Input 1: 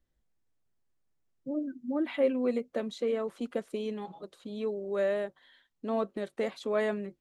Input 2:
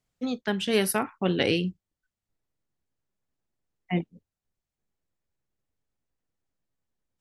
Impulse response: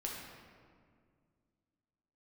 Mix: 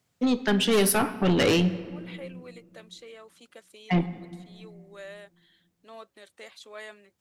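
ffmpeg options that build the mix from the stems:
-filter_complex "[0:a]highpass=f=1.2k:p=1,highshelf=f=2.2k:g=10.5,volume=-8.5dB[a];[1:a]highpass=f=69:w=0.5412,highpass=f=69:w=1.3066,acontrast=63,asoftclip=type=tanh:threshold=-18.5dB,volume=0dB,asplit=2[b][c];[c]volume=-10dB[d];[2:a]atrim=start_sample=2205[e];[d][e]afir=irnorm=-1:irlink=0[f];[a][b][f]amix=inputs=3:normalize=0"

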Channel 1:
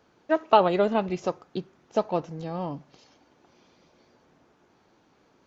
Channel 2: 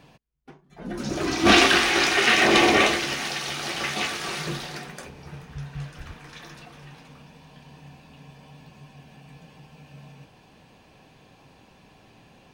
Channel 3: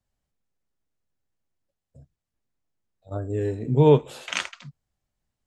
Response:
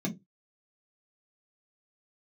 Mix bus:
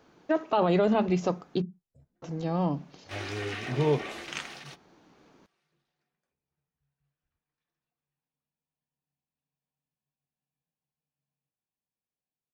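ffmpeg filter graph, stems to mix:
-filter_complex "[0:a]volume=2dB,asplit=3[a][b][c];[a]atrim=end=1.62,asetpts=PTS-STARTPTS,afade=t=out:st=1.616:d=0.004:c=hsin[d];[b]atrim=start=1.62:end=2.22,asetpts=PTS-STARTPTS,volume=0[e];[c]atrim=start=2.22,asetpts=PTS-STARTPTS,afade=t=in:d=0.004:c=hsin[f];[d][e][f]concat=n=3:v=0:a=1,asplit=2[g][h];[h]volume=-24dB[i];[1:a]highshelf=f=5.2k:g=-5.5,acompressor=threshold=-21dB:ratio=5,adelay=1250,volume=-14dB[j];[2:a]volume=-9.5dB,asplit=2[k][l];[l]apad=whole_len=607714[m];[j][m]sidechaingate=range=-33dB:threshold=-54dB:ratio=16:detection=peak[n];[3:a]atrim=start_sample=2205[o];[i][o]afir=irnorm=-1:irlink=0[p];[g][n][k][p]amix=inputs=4:normalize=0,alimiter=limit=-14.5dB:level=0:latency=1:release=15"

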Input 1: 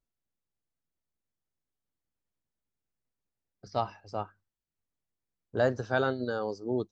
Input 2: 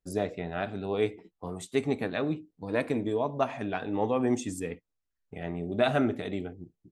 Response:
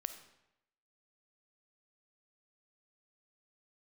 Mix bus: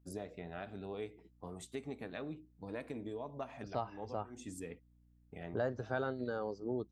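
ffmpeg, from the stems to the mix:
-filter_complex "[0:a]equalizer=f=6.1k:w=0.57:g=-7.5,acompressor=threshold=-37dB:ratio=2,aeval=exprs='val(0)+0.000562*(sin(2*PI*60*n/s)+sin(2*PI*2*60*n/s)/2+sin(2*PI*3*60*n/s)/3+sin(2*PI*4*60*n/s)/4+sin(2*PI*5*60*n/s)/5)':c=same,volume=-1dB,asplit=2[a][b];[1:a]acompressor=threshold=-33dB:ratio=3,volume=-8dB[c];[b]apad=whole_len=304788[d];[c][d]sidechaincompress=threshold=-56dB:ratio=12:attack=9.1:release=121[e];[a][e]amix=inputs=2:normalize=0"

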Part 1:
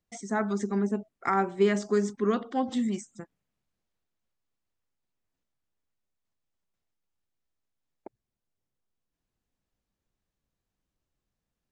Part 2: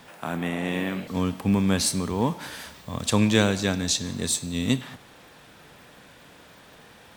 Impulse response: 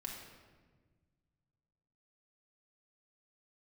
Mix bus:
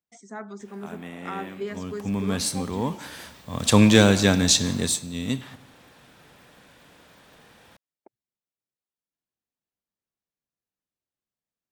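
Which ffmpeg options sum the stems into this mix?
-filter_complex "[0:a]highpass=f=210:p=1,volume=-8dB[a];[1:a]acontrast=74,adelay=600,volume=-1dB,afade=t=in:st=1.8:d=0.64:silence=0.398107,afade=t=in:st=3.48:d=0.28:silence=0.375837,afade=t=out:st=4.68:d=0.35:silence=0.334965,asplit=2[b][c];[c]volume=-18.5dB[d];[2:a]atrim=start_sample=2205[e];[d][e]afir=irnorm=-1:irlink=0[f];[a][b][f]amix=inputs=3:normalize=0"

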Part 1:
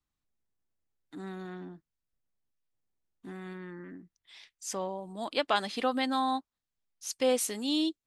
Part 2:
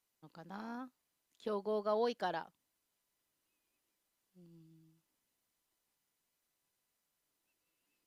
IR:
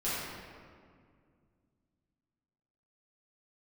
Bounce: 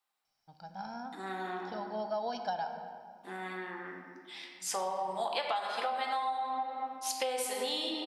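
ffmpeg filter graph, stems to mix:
-filter_complex "[0:a]highpass=590,volume=2.5dB,asplit=3[a][b][c];[b]volume=-4.5dB[d];[1:a]lowpass=f=5.5k:t=q:w=11,highshelf=f=4.2k:g=-7,aecho=1:1:1.3:0.79,adelay=250,volume=-3dB,asplit=2[e][f];[f]volume=-13.5dB[g];[c]apad=whole_len=366552[h];[e][h]sidechaincompress=threshold=-43dB:ratio=8:attack=16:release=954[i];[2:a]atrim=start_sample=2205[j];[d][g]amix=inputs=2:normalize=0[k];[k][j]afir=irnorm=-1:irlink=0[l];[a][i][l]amix=inputs=3:normalize=0,equalizer=f=315:t=o:w=0.33:g=-3,equalizer=f=800:t=o:w=0.33:g=8,equalizer=f=6.3k:t=o:w=0.33:g=-7,acompressor=threshold=-30dB:ratio=16"

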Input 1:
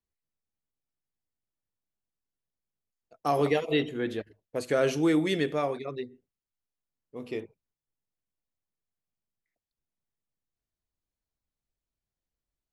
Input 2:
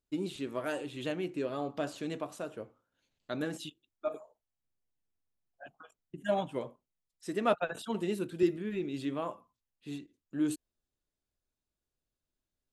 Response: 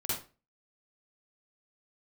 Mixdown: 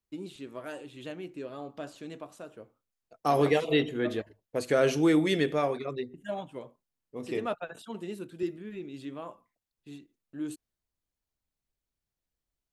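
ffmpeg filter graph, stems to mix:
-filter_complex "[0:a]volume=1dB[a];[1:a]agate=range=-33dB:threshold=-55dB:ratio=3:detection=peak,volume=-5dB[b];[a][b]amix=inputs=2:normalize=0"

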